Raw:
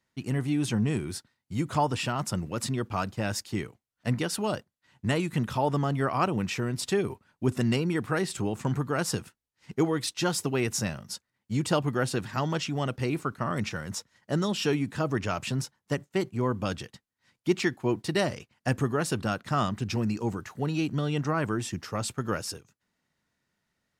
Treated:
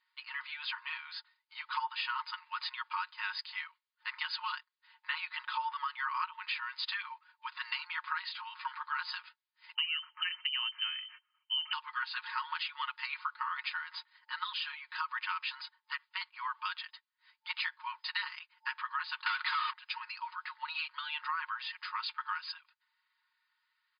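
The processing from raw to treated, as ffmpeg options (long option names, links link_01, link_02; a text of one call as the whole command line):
ffmpeg -i in.wav -filter_complex "[0:a]asettb=1/sr,asplit=3[link_01][link_02][link_03];[link_01]atrim=end=9.754[link_04];[link_02]atrim=start=9.75:end=11.73,asetpts=PTS-STARTPTS,afade=type=in:duration=0.004:curve=qsin,afade=type=out:start_time=1.976:duration=0.004:curve=qsin,lowpass=frequency=2700:width_type=q:width=0.5098,lowpass=frequency=2700:width_type=q:width=0.6013,lowpass=frequency=2700:width_type=q:width=0.9,lowpass=frequency=2700:width_type=q:width=2.563,afreqshift=-3200[link_05];[link_03]atrim=start=11.726[link_06];[link_04][link_05]acrossfade=duration=0.004:curve1=hsin:curve2=qsin[link_07];[link_07][link_06]acrossfade=duration=0.004:curve1=qsin:curve2=hsin,asettb=1/sr,asplit=3[link_08][link_09][link_10];[link_08]atrim=end=14.524[link_11];[link_09]atrim=start=14.52:end=14.92,asetpts=PTS-STARTPTS,afade=type=in:duration=0.004:curve=qsin,afade=type=out:start_time=0.396:duration=0.004:curve=qsin,acompressor=threshold=-32dB:ratio=3:attack=3.2:release=140:knee=1:detection=peak[link_12];[link_10]atrim=start=14.916[link_13];[link_11][link_12]acrossfade=duration=0.004:curve1=hsin:curve2=qsin[link_14];[link_14][link_13]acrossfade=duration=0.004:curve1=qsin:curve2=hsin,asettb=1/sr,asplit=3[link_15][link_16][link_17];[link_15]atrim=end=19.264[link_18];[link_16]atrim=start=19.26:end=19.73,asetpts=PTS-STARTPTS,afade=type=in:duration=0.004:curve=qsin,afade=type=out:start_time=0.466:duration=0.004:curve=qsin,asplit=2[link_19][link_20];[link_20]highpass=frequency=720:poles=1,volume=38dB,asoftclip=type=tanh:threshold=-14dB[link_21];[link_19][link_21]amix=inputs=2:normalize=0,lowpass=frequency=6700:poles=1,volume=-6dB[link_22];[link_17]atrim=start=19.726[link_23];[link_18][link_22]acrossfade=duration=0.004:curve1=hsin:curve2=qsin[link_24];[link_24][link_23]acrossfade=duration=0.004:curve1=qsin:curve2=hsin,aecho=1:1:5.5:0.69,afftfilt=real='re*between(b*sr/4096,890,5000)':imag='im*between(b*sr/4096,890,5000)':win_size=4096:overlap=0.75,acompressor=threshold=-33dB:ratio=6,volume=1dB" out.wav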